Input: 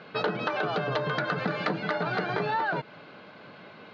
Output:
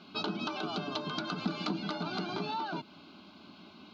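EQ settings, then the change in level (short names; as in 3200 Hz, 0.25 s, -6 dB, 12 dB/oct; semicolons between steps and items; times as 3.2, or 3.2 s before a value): bell 760 Hz -13.5 dB 2.1 oct; fixed phaser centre 490 Hz, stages 6; +5.5 dB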